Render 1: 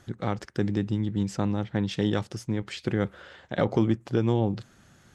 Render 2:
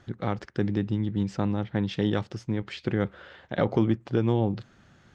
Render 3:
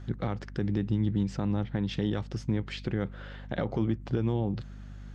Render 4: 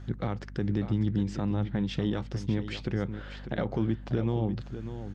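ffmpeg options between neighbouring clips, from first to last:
-af "lowpass=4400"
-af "alimiter=limit=0.106:level=0:latency=1:release=213,aeval=exprs='val(0)+0.00562*(sin(2*PI*50*n/s)+sin(2*PI*2*50*n/s)/2+sin(2*PI*3*50*n/s)/3+sin(2*PI*4*50*n/s)/4+sin(2*PI*5*50*n/s)/5)':c=same,bass=f=250:g=3,treble=f=4000:g=1"
-af "aecho=1:1:596:0.299"

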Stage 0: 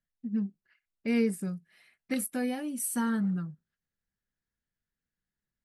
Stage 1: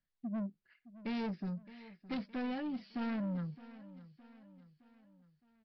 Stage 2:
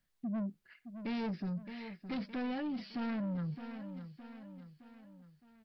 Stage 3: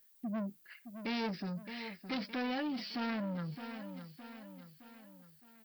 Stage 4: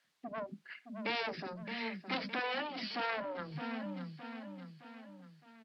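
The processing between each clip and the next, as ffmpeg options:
-af "aresample=11025,asoftclip=type=tanh:threshold=0.0188,aresample=44100,aecho=1:1:615|1230|1845|2460:0.141|0.0706|0.0353|0.0177"
-af "alimiter=level_in=7.5:limit=0.0631:level=0:latency=1:release=25,volume=0.133,volume=2.51"
-af "aemphasis=mode=production:type=bsi,volume=1.58"
-filter_complex "[0:a]highpass=120,lowpass=3900,acrossover=split=320[s0][s1];[s0]adelay=40[s2];[s2][s1]amix=inputs=2:normalize=0,afftfilt=real='re*lt(hypot(re,im),0.0794)':imag='im*lt(hypot(re,im),0.0794)':win_size=1024:overlap=0.75,volume=1.88"

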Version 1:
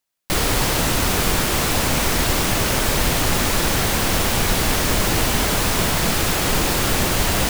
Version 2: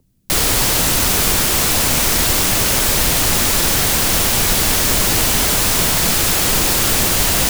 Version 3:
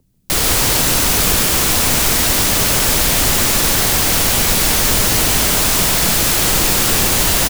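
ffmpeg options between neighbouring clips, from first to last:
-filter_complex "[0:a]highshelf=f=3600:g=9,acrossover=split=220[s0][s1];[s0]acompressor=mode=upward:threshold=0.0316:ratio=2.5[s2];[s2][s1]amix=inputs=2:normalize=0"
-af "aecho=1:1:142:0.531"

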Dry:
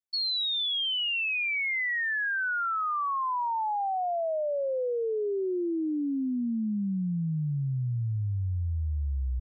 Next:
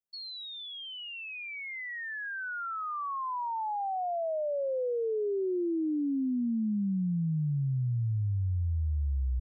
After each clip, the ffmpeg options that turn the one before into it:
-af "equalizer=f=3500:w=0.43:g=-13"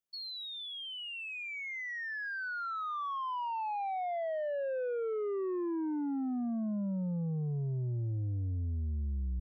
-af "asoftclip=type=tanh:threshold=0.0266"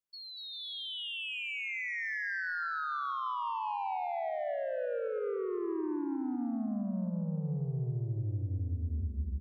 -filter_complex "[0:a]dynaudnorm=f=130:g=9:m=1.88,asplit=2[s0][s1];[s1]aecho=0:1:240|396|497.4|563.3|606.2:0.631|0.398|0.251|0.158|0.1[s2];[s0][s2]amix=inputs=2:normalize=0,alimiter=limit=0.0668:level=0:latency=1:release=151,volume=0.596"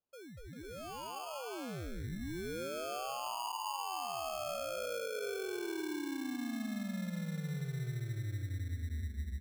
-af "acrusher=samples=23:mix=1:aa=0.000001,volume=0.596"

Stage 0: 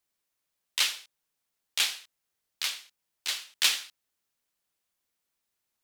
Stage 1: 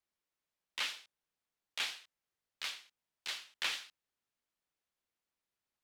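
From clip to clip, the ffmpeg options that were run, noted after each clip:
-filter_complex "[0:a]lowpass=f=3400:p=1,acrossover=split=300|1500|2600[s0][s1][s2][s3];[s3]alimiter=level_in=1.26:limit=0.0631:level=0:latency=1,volume=0.794[s4];[s0][s1][s2][s4]amix=inputs=4:normalize=0,volume=0.596"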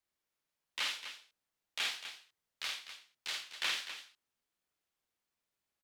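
-af "aecho=1:1:49.56|250.7:0.708|0.316"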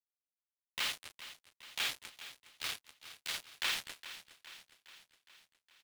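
-af "acrusher=bits=5:mix=0:aa=0.5,aecho=1:1:413|826|1239|1652|2065|2478:0.2|0.116|0.0671|0.0389|0.0226|0.0131"

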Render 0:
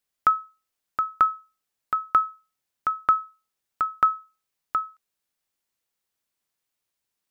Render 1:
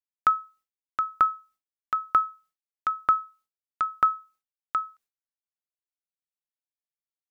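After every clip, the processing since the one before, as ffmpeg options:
-af "agate=range=0.0224:threshold=0.00251:ratio=3:detection=peak,volume=0.841"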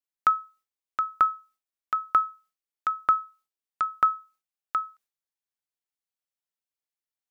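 -af "equalizer=f=76:w=0.34:g=-5"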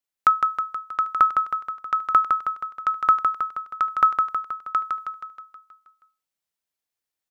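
-af "aecho=1:1:159|318|477|636|795|954|1113|1272:0.562|0.326|0.189|0.11|0.0636|0.0369|0.0214|0.0124,volume=1.58"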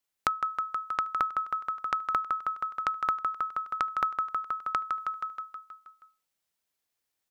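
-af "acompressor=threshold=0.0251:ratio=4,volume=1.5"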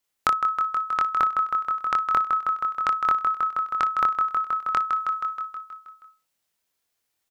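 -af "aecho=1:1:24|59:0.596|0.158,volume=1.58"

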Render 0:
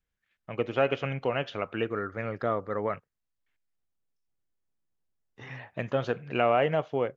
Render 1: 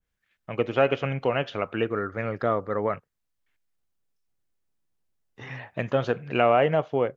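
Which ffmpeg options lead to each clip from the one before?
-af "adynamicequalizer=threshold=0.0126:dfrequency=1600:dqfactor=0.7:tfrequency=1600:tqfactor=0.7:attack=5:release=100:ratio=0.375:range=2.5:mode=cutabove:tftype=highshelf,volume=1.58"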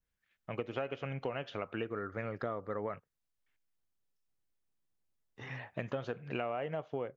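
-af "acompressor=threshold=0.0398:ratio=6,volume=0.531"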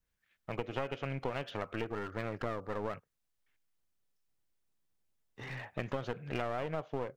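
-af "aeval=exprs='clip(val(0),-1,0.00631)':c=same,volume=1.33"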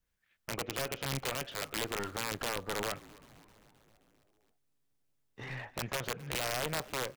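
-filter_complex "[0:a]aeval=exprs='(mod(23.7*val(0)+1,2)-1)/23.7':c=same,asplit=7[s0][s1][s2][s3][s4][s5][s6];[s1]adelay=263,afreqshift=-140,volume=0.106[s7];[s2]adelay=526,afreqshift=-280,volume=0.0692[s8];[s3]adelay=789,afreqshift=-420,volume=0.0447[s9];[s4]adelay=1052,afreqshift=-560,volume=0.0292[s10];[s5]adelay=1315,afreqshift=-700,volume=0.0188[s11];[s6]adelay=1578,afreqshift=-840,volume=0.0123[s12];[s0][s7][s8][s9][s10][s11][s12]amix=inputs=7:normalize=0,aeval=exprs='0.0473*(cos(1*acos(clip(val(0)/0.0473,-1,1)))-cos(1*PI/2))+0.00473*(cos(3*acos(clip(val(0)/0.0473,-1,1)))-cos(3*PI/2))':c=same,volume=1.58"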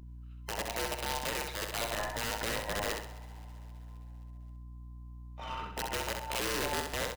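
-af "afftfilt=real='real(if(between(b,1,1008),(2*floor((b-1)/48)+1)*48-b,b),0)':imag='imag(if(between(b,1,1008),(2*floor((b-1)/48)+1)*48-b,b),0)*if(between(b,1,1008),-1,1)':win_size=2048:overlap=0.75,aeval=exprs='val(0)+0.00398*(sin(2*PI*60*n/s)+sin(2*PI*2*60*n/s)/2+sin(2*PI*3*60*n/s)/3+sin(2*PI*4*60*n/s)/4+sin(2*PI*5*60*n/s)/5)':c=same,aecho=1:1:65|130|195|260|325:0.562|0.219|0.0855|0.0334|0.013"

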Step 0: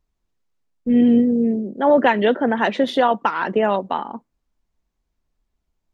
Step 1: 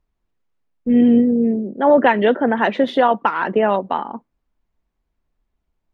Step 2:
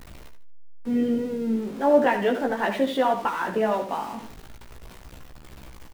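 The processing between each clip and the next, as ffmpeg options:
-af "bass=f=250:g=-1,treble=f=4000:g=-11,volume=1.26"
-af "aeval=exprs='val(0)+0.5*0.0398*sgn(val(0))':c=same,aecho=1:1:75|150|225:0.335|0.0938|0.0263,flanger=delay=15:depth=3.7:speed=0.37,volume=0.531"

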